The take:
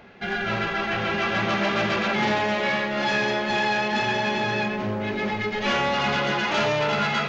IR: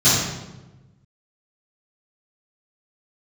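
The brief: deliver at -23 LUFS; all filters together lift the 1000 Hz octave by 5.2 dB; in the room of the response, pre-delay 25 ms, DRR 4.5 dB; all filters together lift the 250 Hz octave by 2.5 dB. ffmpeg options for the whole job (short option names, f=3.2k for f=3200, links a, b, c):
-filter_complex "[0:a]equalizer=f=250:t=o:g=3,equalizer=f=1k:t=o:g=6.5,asplit=2[a][b];[1:a]atrim=start_sample=2205,adelay=25[c];[b][c]afir=irnorm=-1:irlink=0,volume=-25.5dB[d];[a][d]amix=inputs=2:normalize=0,volume=-4dB"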